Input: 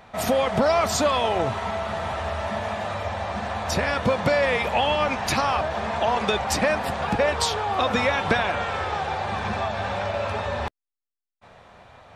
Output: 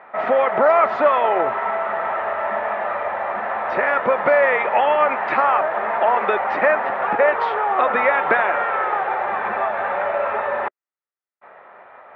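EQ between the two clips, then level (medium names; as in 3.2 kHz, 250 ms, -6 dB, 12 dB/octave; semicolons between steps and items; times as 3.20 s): cabinet simulation 370–2300 Hz, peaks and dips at 380 Hz +5 dB, 590 Hz +4 dB, 890 Hz +4 dB, 1.3 kHz +7 dB, 1.9 kHz +6 dB; +2.0 dB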